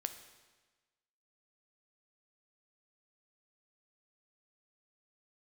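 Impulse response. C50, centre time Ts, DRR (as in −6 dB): 10.5 dB, 15 ms, 8.0 dB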